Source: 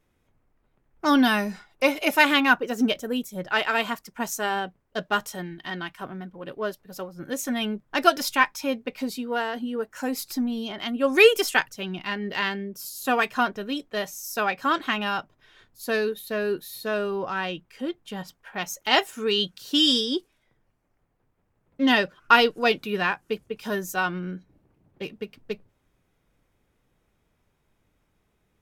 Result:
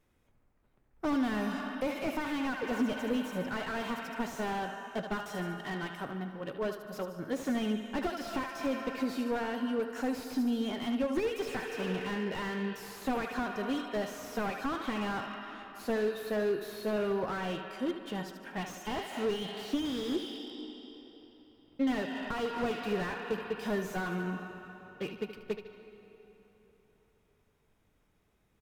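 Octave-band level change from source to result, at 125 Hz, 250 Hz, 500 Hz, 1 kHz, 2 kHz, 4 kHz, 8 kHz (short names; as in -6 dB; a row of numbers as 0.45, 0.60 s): -2.5, -5.5, -7.5, -11.5, -13.5, -16.0, -13.0 dB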